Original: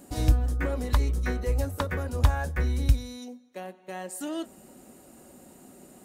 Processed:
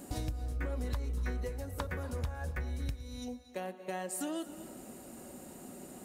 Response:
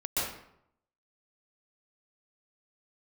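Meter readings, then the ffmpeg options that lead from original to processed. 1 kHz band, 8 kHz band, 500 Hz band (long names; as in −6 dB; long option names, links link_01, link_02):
−7.5 dB, −3.0 dB, −6.5 dB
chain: -filter_complex "[0:a]acompressor=threshold=-36dB:ratio=10,asplit=2[link_01][link_02];[1:a]atrim=start_sample=2205,adelay=112[link_03];[link_02][link_03]afir=irnorm=-1:irlink=0,volume=-20.5dB[link_04];[link_01][link_04]amix=inputs=2:normalize=0,volume=2dB"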